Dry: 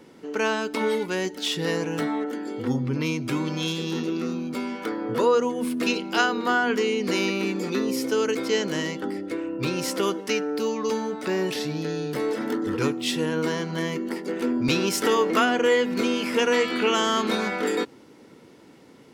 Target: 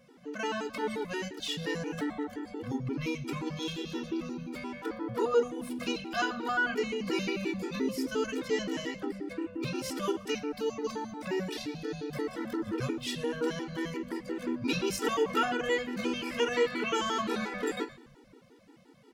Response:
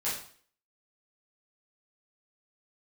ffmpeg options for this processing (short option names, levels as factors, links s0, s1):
-filter_complex "[0:a]asplit=5[s0][s1][s2][s3][s4];[s1]adelay=120,afreqshift=-100,volume=0.0794[s5];[s2]adelay=240,afreqshift=-200,volume=0.0447[s6];[s3]adelay=360,afreqshift=-300,volume=0.0248[s7];[s4]adelay=480,afreqshift=-400,volume=0.014[s8];[s0][s5][s6][s7][s8]amix=inputs=5:normalize=0,asplit=2[s9][s10];[1:a]atrim=start_sample=2205,lowpass=5400[s11];[s10][s11]afir=irnorm=-1:irlink=0,volume=0.237[s12];[s9][s12]amix=inputs=2:normalize=0,afftfilt=real='re*gt(sin(2*PI*5.7*pts/sr)*(1-2*mod(floor(b*sr/1024/250),2)),0)':imag='im*gt(sin(2*PI*5.7*pts/sr)*(1-2*mod(floor(b*sr/1024/250),2)),0)':win_size=1024:overlap=0.75,volume=0.501"